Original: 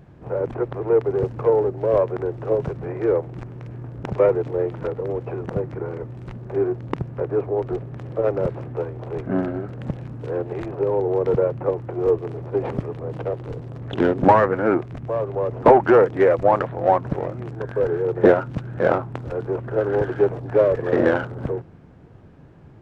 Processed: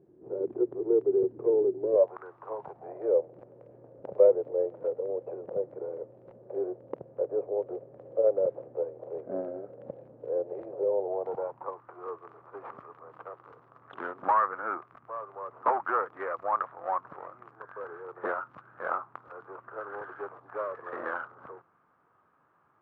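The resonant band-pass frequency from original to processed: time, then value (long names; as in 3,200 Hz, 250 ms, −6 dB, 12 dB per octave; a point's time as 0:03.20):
resonant band-pass, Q 5
0:01.91 370 Hz
0:02.21 1,300 Hz
0:03.14 540 Hz
0:10.88 540 Hz
0:11.85 1,200 Hz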